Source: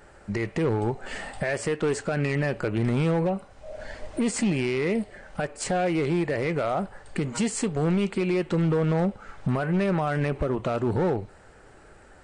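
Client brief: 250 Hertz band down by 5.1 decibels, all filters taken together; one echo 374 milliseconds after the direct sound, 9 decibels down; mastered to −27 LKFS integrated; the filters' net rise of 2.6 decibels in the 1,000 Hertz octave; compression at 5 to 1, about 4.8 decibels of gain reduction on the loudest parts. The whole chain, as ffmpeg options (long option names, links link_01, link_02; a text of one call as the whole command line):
ffmpeg -i in.wav -af "equalizer=frequency=250:width_type=o:gain=-8.5,equalizer=frequency=1000:width_type=o:gain=4.5,acompressor=threshold=-27dB:ratio=5,aecho=1:1:374:0.355,volume=4.5dB" out.wav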